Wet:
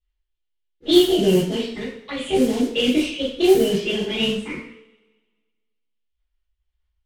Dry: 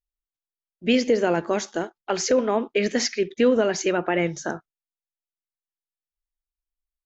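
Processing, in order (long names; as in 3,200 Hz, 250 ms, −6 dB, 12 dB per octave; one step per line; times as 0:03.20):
pitch shifter swept by a sawtooth +7.5 semitones, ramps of 1,182 ms
phaser swept by the level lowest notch 190 Hz, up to 1,300 Hz, full sweep at −22 dBFS
drawn EQ curve 160 Hz 0 dB, 300 Hz −6 dB, 440 Hz −5 dB, 650 Hz −20 dB, 1,800 Hz −17 dB, 3,100 Hz −1 dB, 5,000 Hz −10 dB
noise that follows the level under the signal 16 dB
low-shelf EQ 67 Hz +11 dB
coupled-rooms reverb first 0.53 s, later 1.6 s, from −26 dB, DRR −8.5 dB
low-pass that shuts in the quiet parts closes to 2,600 Hz, open at −14.5 dBFS
one half of a high-frequency compander encoder only
level +3.5 dB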